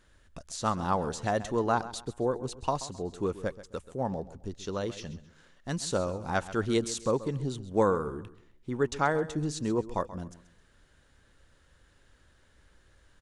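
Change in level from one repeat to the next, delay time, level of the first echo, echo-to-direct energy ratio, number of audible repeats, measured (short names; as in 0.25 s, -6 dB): -10.0 dB, 0.132 s, -15.5 dB, -15.0 dB, 2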